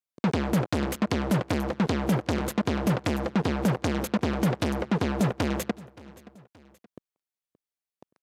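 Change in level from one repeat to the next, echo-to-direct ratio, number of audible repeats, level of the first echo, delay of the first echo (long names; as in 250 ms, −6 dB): −6.5 dB, −20.0 dB, 2, −21.0 dB, 574 ms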